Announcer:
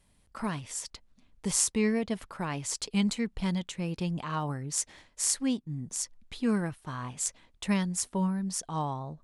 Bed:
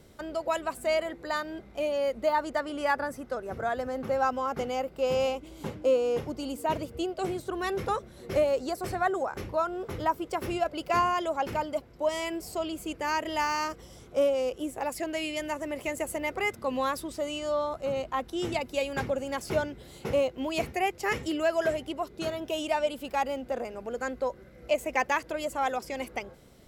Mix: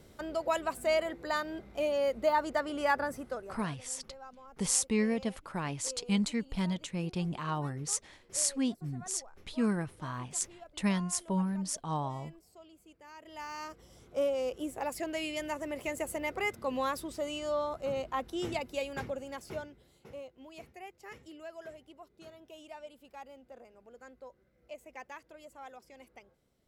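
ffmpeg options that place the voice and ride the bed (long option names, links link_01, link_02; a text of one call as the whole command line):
ffmpeg -i stem1.wav -i stem2.wav -filter_complex "[0:a]adelay=3150,volume=-2dB[link_01];[1:a]volume=18dB,afade=type=out:start_time=3.17:duration=0.51:silence=0.0841395,afade=type=in:start_time=13.15:duration=1.43:silence=0.105925,afade=type=out:start_time=18.34:duration=1.68:silence=0.158489[link_02];[link_01][link_02]amix=inputs=2:normalize=0" out.wav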